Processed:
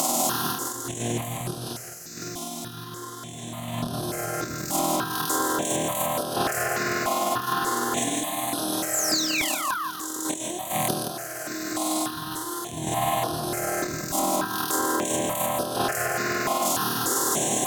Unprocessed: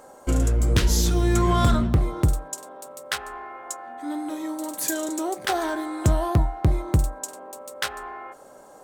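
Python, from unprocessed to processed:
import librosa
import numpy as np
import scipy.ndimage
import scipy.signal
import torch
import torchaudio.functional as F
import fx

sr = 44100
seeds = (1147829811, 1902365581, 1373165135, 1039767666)

y = fx.bin_compress(x, sr, power=0.4)
y = scipy.signal.sosfilt(scipy.signal.butter(4, 130.0, 'highpass', fs=sr, output='sos'), y)
y = fx.high_shelf(y, sr, hz=3000.0, db=9.5)
y = fx.hum_notches(y, sr, base_hz=60, count=3)
y = fx.over_compress(y, sr, threshold_db=-24.0, ratio=-0.5)
y = fx.spec_paint(y, sr, seeds[0], shape='fall', start_s=4.46, length_s=0.41, low_hz=940.0, high_hz=8300.0, level_db=-22.0)
y = fx.stretch_grains(y, sr, factor=2.0, grain_ms=101.0)
y = fx.echo_feedback(y, sr, ms=169, feedback_pct=33, wet_db=-6)
y = fx.phaser_held(y, sr, hz=3.4, low_hz=440.0, high_hz=7200.0)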